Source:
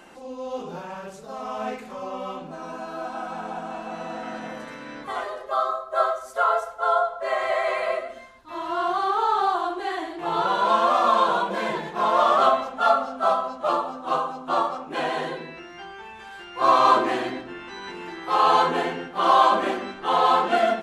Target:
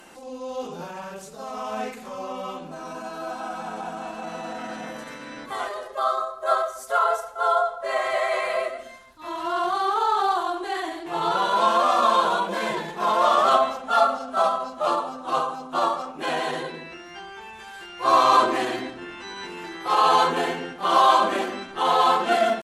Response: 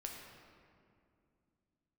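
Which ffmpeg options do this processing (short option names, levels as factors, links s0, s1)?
-af "aemphasis=mode=production:type=cd,atempo=0.92"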